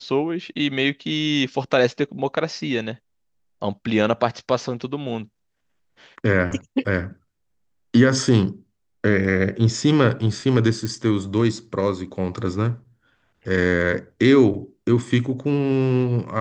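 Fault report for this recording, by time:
10.85 pop

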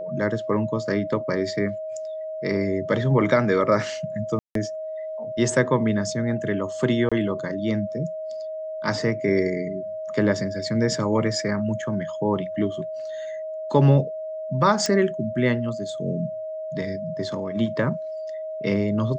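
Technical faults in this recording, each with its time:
tone 630 Hz -29 dBFS
4.39–4.55 gap 0.163 s
7.09–7.12 gap 26 ms
14.86 pop -11 dBFS

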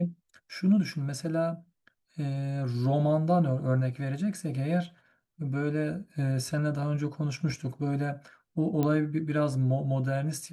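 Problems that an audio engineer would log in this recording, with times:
8.83 pop -16 dBFS

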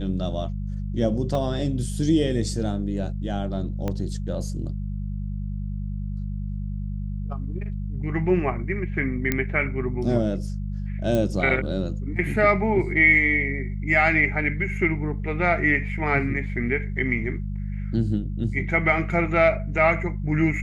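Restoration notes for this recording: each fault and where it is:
hum 50 Hz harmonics 4 -29 dBFS
1.35 gap 2.1 ms
3.88 pop -15 dBFS
9.32 pop -8 dBFS
11.15 pop -13 dBFS

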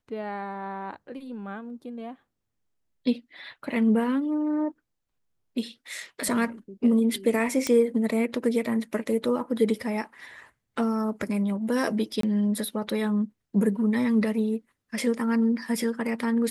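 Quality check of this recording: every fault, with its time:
7.67 pop -11 dBFS
12.21–12.23 gap 23 ms

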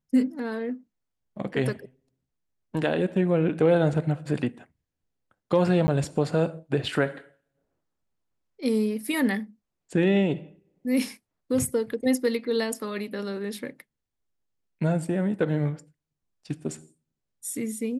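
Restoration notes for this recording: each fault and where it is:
5.87–5.88 gap 10 ms

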